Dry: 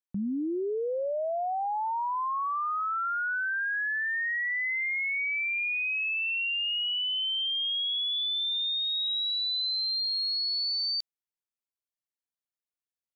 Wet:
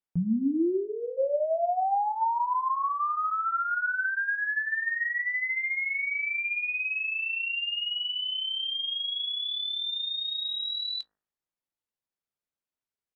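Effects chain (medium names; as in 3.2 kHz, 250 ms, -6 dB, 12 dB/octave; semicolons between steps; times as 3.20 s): treble shelf 2.6 kHz -10 dB; de-hum 59.71 Hz, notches 37; flange 0.86 Hz, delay 9.1 ms, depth 4.5 ms, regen -33%; pitch shift -2.5 st; trim +8.5 dB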